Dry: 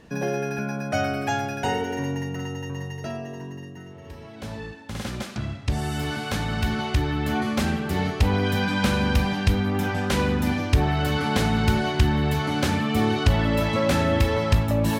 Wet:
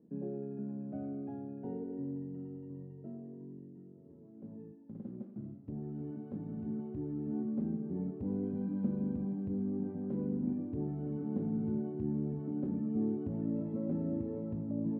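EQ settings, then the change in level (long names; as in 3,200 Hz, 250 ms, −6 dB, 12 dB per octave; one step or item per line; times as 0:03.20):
flat-topped band-pass 250 Hz, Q 1.1
−8.5 dB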